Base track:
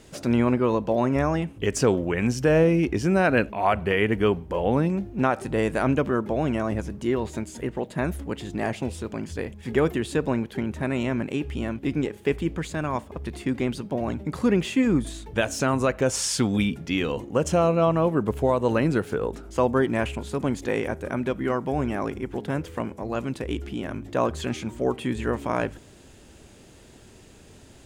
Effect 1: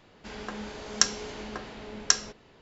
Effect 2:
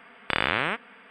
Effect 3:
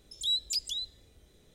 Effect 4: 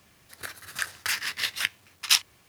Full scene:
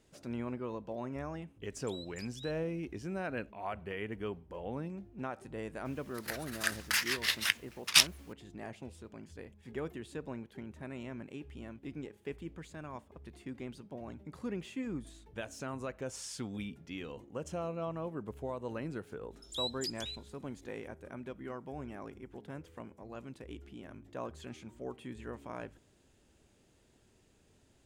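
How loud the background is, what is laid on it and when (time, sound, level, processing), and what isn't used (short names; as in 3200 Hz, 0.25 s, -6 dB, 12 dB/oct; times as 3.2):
base track -17.5 dB
1.66 add 3 -12 dB + limiter -32.5 dBFS
5.85 add 4 -2.5 dB + record warp 78 rpm, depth 160 cents
19.31 add 3 -8 dB
not used: 1, 2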